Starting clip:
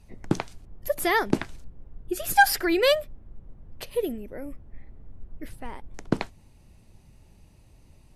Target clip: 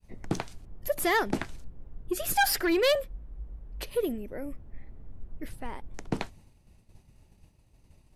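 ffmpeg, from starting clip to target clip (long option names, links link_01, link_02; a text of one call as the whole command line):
ffmpeg -i in.wav -filter_complex "[0:a]asettb=1/sr,asplit=3[link_01][link_02][link_03];[link_01]atrim=end=2.954[link_04];[link_02]atrim=start=2.95:end=3.87,asetpts=PTS-STARTPTS,afade=type=in:duration=0.004:curve=qsin,afade=type=out:start_time=0.916:duration=0.004:curve=qsin,afreqshift=-57[link_05];[link_03]atrim=start=3.866[link_06];[link_04][link_05]acrossfade=duration=0.004:curve1=hsin:curve2=qsin[link_07];[link_07][link_06]acrossfade=duration=0.004:curve1=qsin:curve2=hsin,agate=range=-33dB:threshold=-47dB:ratio=3:detection=peak,asoftclip=type=tanh:threshold=-18.5dB" out.wav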